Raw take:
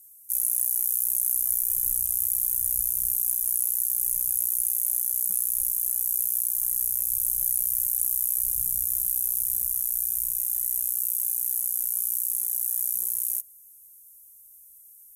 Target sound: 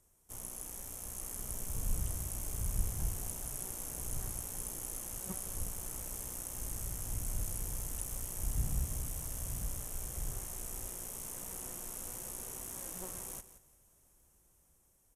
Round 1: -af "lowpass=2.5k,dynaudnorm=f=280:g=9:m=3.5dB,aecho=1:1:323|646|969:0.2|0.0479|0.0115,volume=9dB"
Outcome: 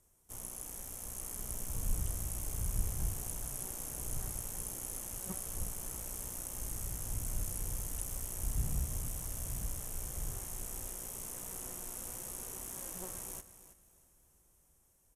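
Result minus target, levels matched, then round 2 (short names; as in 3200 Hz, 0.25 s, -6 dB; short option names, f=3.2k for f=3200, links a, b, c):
echo 0.15 s late
-af "lowpass=2.5k,dynaudnorm=f=280:g=9:m=3.5dB,aecho=1:1:173|346|519:0.2|0.0479|0.0115,volume=9dB"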